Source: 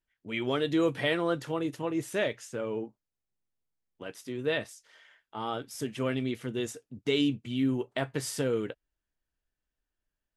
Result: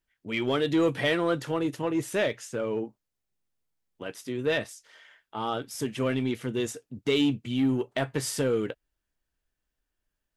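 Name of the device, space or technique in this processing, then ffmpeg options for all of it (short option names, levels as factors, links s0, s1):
parallel distortion: -filter_complex "[0:a]asplit=2[s0][s1];[s1]asoftclip=type=hard:threshold=0.0422,volume=0.562[s2];[s0][s2]amix=inputs=2:normalize=0"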